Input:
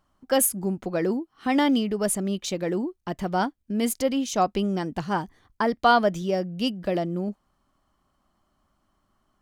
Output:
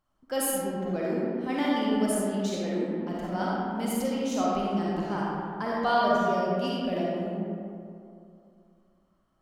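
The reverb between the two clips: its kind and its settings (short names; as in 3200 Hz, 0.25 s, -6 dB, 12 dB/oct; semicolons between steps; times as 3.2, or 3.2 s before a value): digital reverb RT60 2.5 s, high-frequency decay 0.45×, pre-delay 10 ms, DRR -6 dB; gain -10 dB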